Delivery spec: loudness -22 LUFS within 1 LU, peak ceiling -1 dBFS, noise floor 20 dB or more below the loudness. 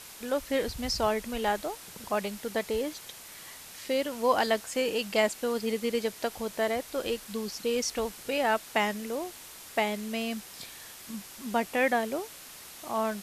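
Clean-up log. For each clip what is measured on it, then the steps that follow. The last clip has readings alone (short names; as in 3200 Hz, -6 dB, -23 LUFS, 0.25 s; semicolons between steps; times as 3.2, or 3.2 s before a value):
noise floor -47 dBFS; noise floor target -51 dBFS; loudness -30.5 LUFS; peak -11.5 dBFS; loudness target -22.0 LUFS
-> denoiser 6 dB, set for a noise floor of -47 dBFS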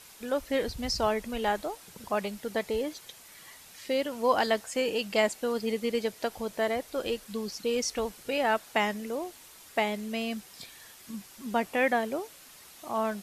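noise floor -52 dBFS; loudness -30.5 LUFS; peak -11.5 dBFS; loudness target -22.0 LUFS
-> gain +8.5 dB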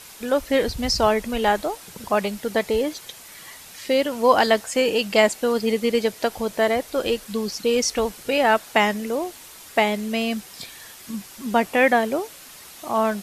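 loudness -22.0 LUFS; peak -3.0 dBFS; noise floor -43 dBFS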